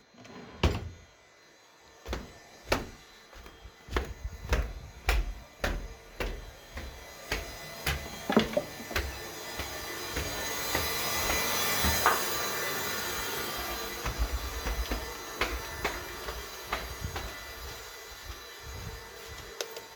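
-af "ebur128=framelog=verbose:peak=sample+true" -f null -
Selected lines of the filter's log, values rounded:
Integrated loudness:
  I:         -32.9 LUFS
  Threshold: -43.6 LUFS
Loudness range:
  LRA:        10.8 LU
  Threshold: -53.1 LUFS
  LRA low:   -39.2 LUFS
  LRA high:  -28.5 LUFS
Sample peak:
  Peak:       -9.3 dBFS
True peak:
  Peak:       -9.3 dBFS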